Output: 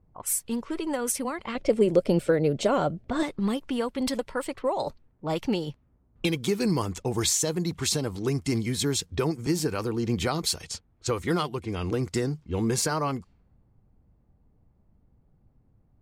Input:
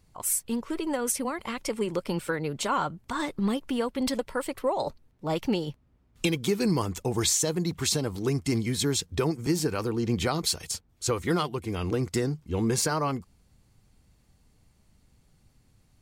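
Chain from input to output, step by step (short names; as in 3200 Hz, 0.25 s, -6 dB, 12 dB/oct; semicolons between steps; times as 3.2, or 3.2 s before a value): low-pass opened by the level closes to 810 Hz, open at -25.5 dBFS; 1.55–3.23 resonant low shelf 780 Hz +6 dB, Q 3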